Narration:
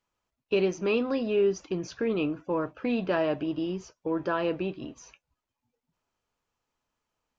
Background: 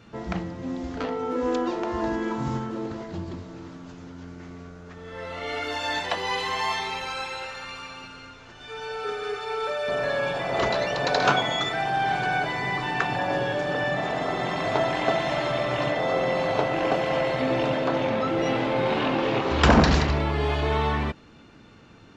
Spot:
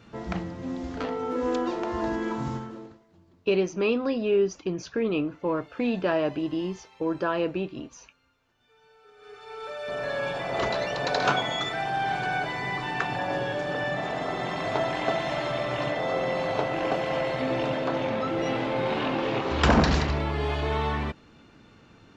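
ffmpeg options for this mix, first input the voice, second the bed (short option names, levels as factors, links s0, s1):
-filter_complex "[0:a]adelay=2950,volume=1.19[s0];[1:a]volume=10.6,afade=t=out:st=2.38:d=0.62:silence=0.0668344,afade=t=in:st=9.13:d=1.14:silence=0.0794328[s1];[s0][s1]amix=inputs=2:normalize=0"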